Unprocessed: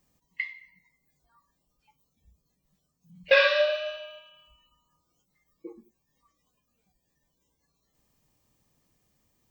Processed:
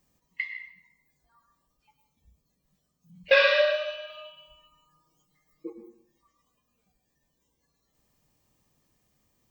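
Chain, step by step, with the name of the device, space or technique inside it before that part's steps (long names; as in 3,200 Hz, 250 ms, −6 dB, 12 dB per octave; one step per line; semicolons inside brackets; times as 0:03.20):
filtered reverb send (on a send: high-pass filter 250 Hz 12 dB per octave + low-pass filter 4,300 Hz + convolution reverb RT60 0.65 s, pre-delay 97 ms, DRR 6 dB)
0:04.09–0:05.70: on the sum: comb filter 6.5 ms, depth 92%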